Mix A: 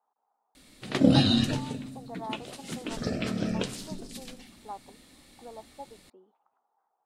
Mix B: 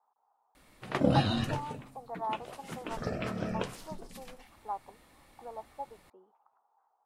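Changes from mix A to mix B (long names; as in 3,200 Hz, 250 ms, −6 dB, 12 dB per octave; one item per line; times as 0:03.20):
background: send −10.5 dB
master: add octave-band graphic EQ 250/1,000/4,000/8,000 Hz −7/+6/−8/−7 dB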